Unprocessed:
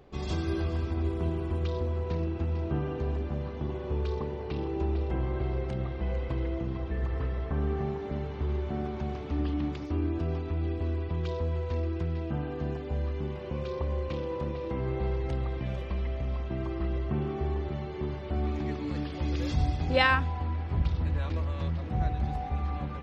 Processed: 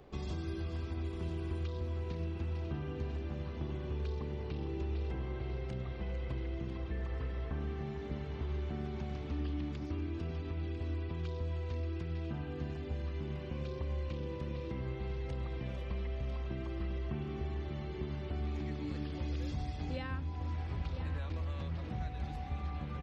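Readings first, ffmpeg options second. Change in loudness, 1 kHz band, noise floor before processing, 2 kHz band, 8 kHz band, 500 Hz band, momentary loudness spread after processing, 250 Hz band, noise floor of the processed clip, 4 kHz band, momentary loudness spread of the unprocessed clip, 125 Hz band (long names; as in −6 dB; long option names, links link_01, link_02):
−7.5 dB, −12.0 dB, −37 dBFS, −13.5 dB, can't be measured, −9.5 dB, 2 LU, −7.5 dB, −42 dBFS, −10.0 dB, 4 LU, −6.5 dB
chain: -filter_complex "[0:a]acrossover=split=320|1700[link_01][link_02][link_03];[link_01]acompressor=threshold=-36dB:ratio=4[link_04];[link_02]acompressor=threshold=-49dB:ratio=4[link_05];[link_03]acompressor=threshold=-54dB:ratio=4[link_06];[link_04][link_05][link_06]amix=inputs=3:normalize=0,aecho=1:1:997:0.299,volume=-1dB"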